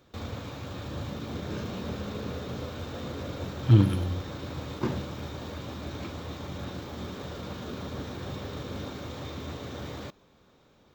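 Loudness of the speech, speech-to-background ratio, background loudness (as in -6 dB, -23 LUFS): -23.5 LUFS, 14.0 dB, -37.5 LUFS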